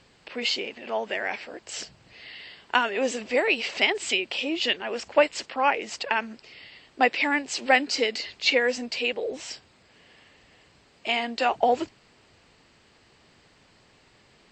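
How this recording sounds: noise floor -60 dBFS; spectral tilt -1.0 dB/octave

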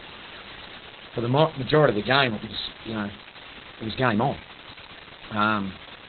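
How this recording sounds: a quantiser's noise floor 6-bit, dither triangular; Opus

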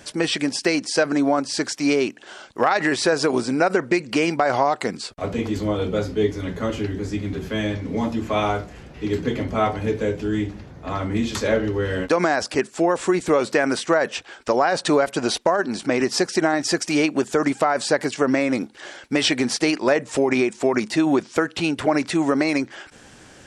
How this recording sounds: noise floor -47 dBFS; spectral tilt -4.5 dB/octave

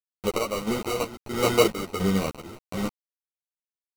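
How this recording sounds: a quantiser's noise floor 6-bit, dither none; chopped level 1.5 Hz, depth 65%, duty 55%; aliases and images of a low sample rate 1.7 kHz, jitter 0%; a shimmering, thickened sound

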